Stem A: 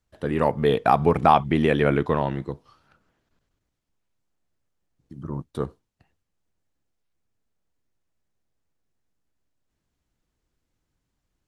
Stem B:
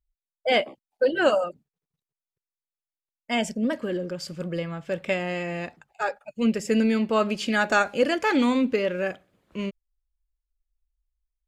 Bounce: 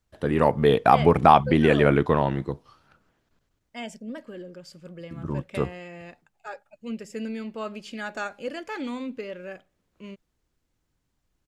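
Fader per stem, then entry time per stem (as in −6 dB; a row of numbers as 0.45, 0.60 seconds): +1.5, −11.0 decibels; 0.00, 0.45 seconds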